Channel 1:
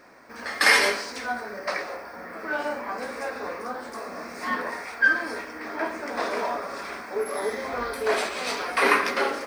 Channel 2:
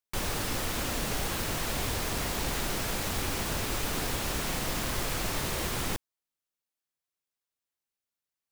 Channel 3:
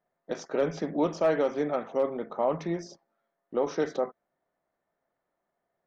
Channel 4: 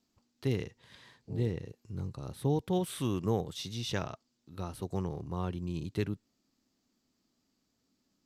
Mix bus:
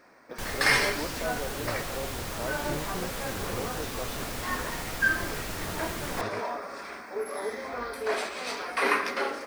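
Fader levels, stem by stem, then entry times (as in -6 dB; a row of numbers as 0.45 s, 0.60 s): -5.0 dB, -4.5 dB, -10.5 dB, -9.0 dB; 0.00 s, 0.25 s, 0.00 s, 0.25 s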